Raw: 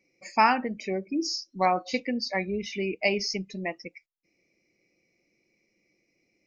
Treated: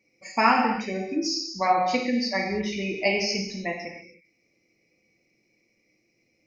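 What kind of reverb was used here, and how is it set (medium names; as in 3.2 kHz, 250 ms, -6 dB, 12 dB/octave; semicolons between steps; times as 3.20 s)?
gated-style reverb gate 340 ms falling, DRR -0.5 dB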